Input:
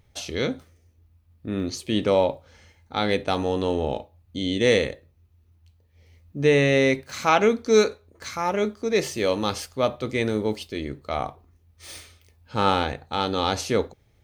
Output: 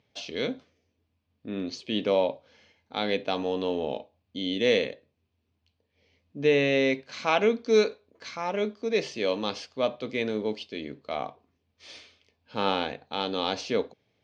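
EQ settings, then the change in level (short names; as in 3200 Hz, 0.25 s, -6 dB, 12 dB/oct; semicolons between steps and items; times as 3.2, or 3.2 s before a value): speaker cabinet 250–4800 Hz, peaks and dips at 350 Hz -7 dB, 540 Hz -3 dB, 840 Hz -6 dB, 1300 Hz -9 dB, 1900 Hz -6 dB, 3900 Hz -3 dB; 0.0 dB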